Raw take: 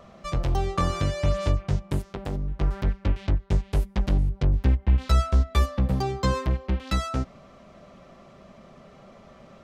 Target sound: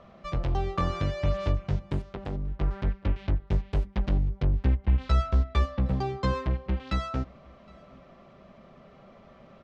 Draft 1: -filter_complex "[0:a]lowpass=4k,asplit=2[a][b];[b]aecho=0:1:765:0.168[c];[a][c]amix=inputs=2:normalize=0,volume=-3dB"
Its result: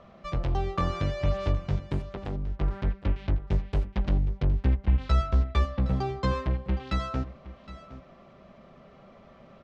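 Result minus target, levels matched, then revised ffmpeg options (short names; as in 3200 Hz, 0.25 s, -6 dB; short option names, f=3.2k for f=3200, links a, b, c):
echo-to-direct +10.5 dB
-filter_complex "[0:a]lowpass=4k,asplit=2[a][b];[b]aecho=0:1:765:0.0501[c];[a][c]amix=inputs=2:normalize=0,volume=-3dB"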